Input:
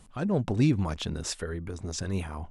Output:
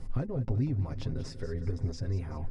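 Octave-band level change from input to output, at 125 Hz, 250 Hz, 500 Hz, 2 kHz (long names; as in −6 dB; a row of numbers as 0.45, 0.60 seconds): −1.0, −8.0, −5.5, −11.5 decibels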